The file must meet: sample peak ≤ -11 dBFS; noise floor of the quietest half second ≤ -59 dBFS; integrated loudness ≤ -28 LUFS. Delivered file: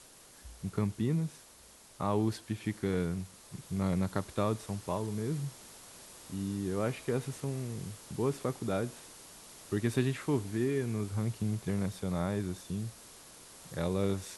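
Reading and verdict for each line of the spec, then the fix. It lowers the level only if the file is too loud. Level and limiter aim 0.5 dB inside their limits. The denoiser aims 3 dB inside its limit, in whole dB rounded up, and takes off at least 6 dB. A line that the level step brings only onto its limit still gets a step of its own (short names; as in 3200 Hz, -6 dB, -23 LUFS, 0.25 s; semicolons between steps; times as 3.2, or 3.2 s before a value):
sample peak -15.0 dBFS: OK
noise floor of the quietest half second -57 dBFS: fail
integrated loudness -34.5 LUFS: OK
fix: denoiser 6 dB, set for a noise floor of -57 dBFS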